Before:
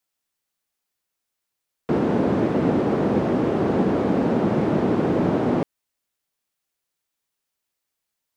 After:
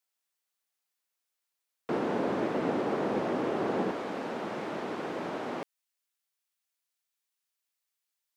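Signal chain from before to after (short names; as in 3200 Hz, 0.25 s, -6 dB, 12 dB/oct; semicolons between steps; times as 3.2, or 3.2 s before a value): HPF 580 Hz 6 dB/oct, from 3.91 s 1400 Hz; gain -3.5 dB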